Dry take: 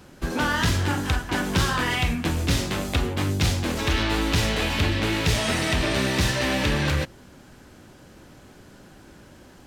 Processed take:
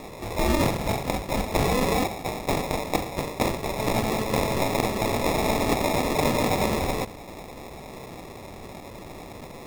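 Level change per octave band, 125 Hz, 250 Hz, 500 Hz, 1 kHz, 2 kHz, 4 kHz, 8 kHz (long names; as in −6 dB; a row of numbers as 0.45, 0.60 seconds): −5.5, −1.0, +4.0, +3.0, −6.0, −6.5, −2.5 decibels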